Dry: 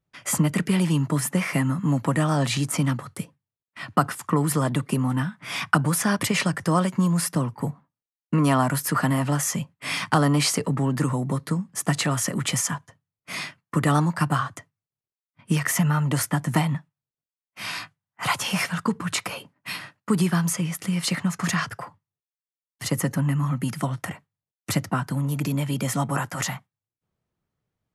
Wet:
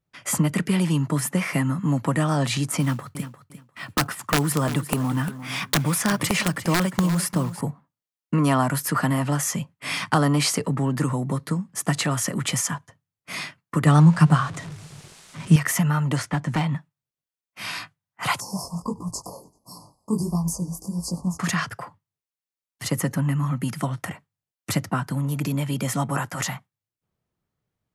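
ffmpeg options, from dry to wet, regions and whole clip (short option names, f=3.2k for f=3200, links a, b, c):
-filter_complex "[0:a]asettb=1/sr,asplit=3[a][b][c];[a]atrim=end=2.804[d];[b]atrim=start=2.8:end=7.61,asetpts=PTS-STARTPTS,afade=t=in:d=0.004:c=qsin,afade=t=out:st=4.806:d=0.004:c=qsin,aeval=exprs='(mod(3.98*val(0)+1,2)-1)/3.98':c=same,acrusher=bits=6:mode=log:mix=0:aa=0.000001,aecho=1:1:350|700:0.224|0.0403,atrim=end_sample=212121[e];[c]atrim=start=7.606[f];[d][e]acrossfade=d=0.004:c1=hsin:c2=qsin[g];[g][f]acrossfade=d=0.004:c1=qsin:c2=hsin,asettb=1/sr,asplit=3[h][i][j];[h]atrim=end=13.864[k];[i]atrim=start=13.86:end=15.56,asetpts=PTS-STARTPTS,afade=t=in:d=0.004:c=qsin,afade=t=out:st=1.696:d=0.004:c=qsin,aeval=exprs='val(0)+0.5*0.02*sgn(val(0))':c=same,lowpass=f=9.7k:w=0.5412,lowpass=f=9.7k:w=1.3066,equalizer=f=160:w=4.7:g=11[l];[j]atrim=start=15.556[m];[k][l]acrossfade=d=0.004:c1=hsin:c2=qsin[n];[n][m]acrossfade=d=0.004:c1=qsin:c2=hsin,asettb=1/sr,asplit=3[o][p][q];[o]atrim=end=16.164[r];[p]atrim=start=16.16:end=16.73,asetpts=PTS-STARTPTS,afade=t=in:d=0.004:c=qsin,afade=t=out:st=0.566:d=0.004:c=qsin,lowpass=5.7k,volume=17.5dB,asoftclip=hard,volume=-17.5dB[s];[q]atrim=start=16.726[t];[r][s]acrossfade=d=0.004:c1=hsin:c2=qsin[u];[u][t]acrossfade=d=0.004:c1=qsin:c2=hsin,asettb=1/sr,asplit=3[v][w][x];[v]atrim=end=18.404[y];[w]atrim=start=18.4:end=21.39,asetpts=PTS-STARTPTS,afade=t=in:d=0.004:c=qsin,afade=t=out:st=2.986:d=0.004:c=qsin,asplit=5[z][aa][ab][ac][ad];[aa]adelay=97,afreqshift=-120,volume=-23dB[ae];[ab]adelay=194,afreqshift=-240,volume=-28dB[af];[ac]adelay=291,afreqshift=-360,volume=-33.1dB[ag];[ad]adelay=388,afreqshift=-480,volume=-38.1dB[ah];[z][ae][af][ag][ah]amix=inputs=5:normalize=0,atrim=end_sample=131859,flanger=delay=16.5:depth=7.2:speed=1.5,asuperstop=centerf=2300:order=20:qfactor=0.64[ai];[x]atrim=start=21.386[aj];[y][ai]acrossfade=d=0.004:c1=hsin:c2=qsin[ak];[ak][aj]acrossfade=d=0.004:c1=qsin:c2=hsin"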